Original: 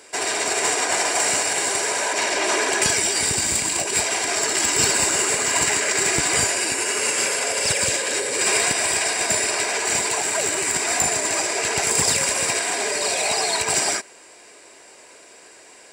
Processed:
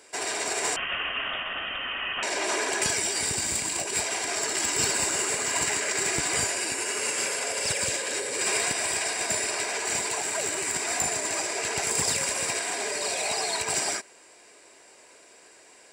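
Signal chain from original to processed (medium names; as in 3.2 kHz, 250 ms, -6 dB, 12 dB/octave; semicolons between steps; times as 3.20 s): 0.76–2.23 s: frequency inversion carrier 3.5 kHz; trim -6.5 dB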